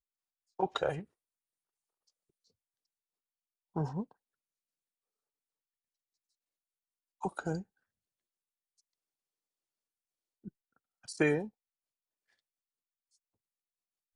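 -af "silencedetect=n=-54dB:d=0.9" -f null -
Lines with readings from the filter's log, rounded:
silence_start: 1.05
silence_end: 3.75 | silence_duration: 2.71
silence_start: 4.12
silence_end: 7.21 | silence_duration: 3.10
silence_start: 7.63
silence_end: 10.44 | silence_duration: 2.81
silence_start: 11.49
silence_end: 14.15 | silence_duration: 2.66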